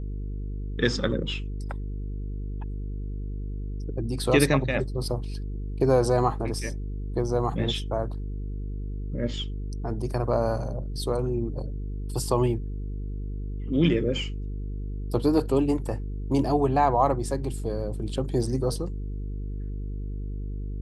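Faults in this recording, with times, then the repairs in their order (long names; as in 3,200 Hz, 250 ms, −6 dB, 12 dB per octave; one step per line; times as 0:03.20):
mains buzz 50 Hz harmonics 9 −32 dBFS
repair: hum removal 50 Hz, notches 9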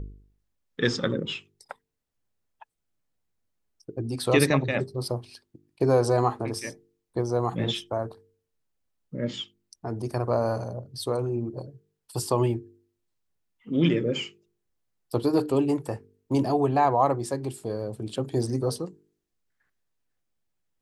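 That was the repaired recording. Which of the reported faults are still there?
none of them is left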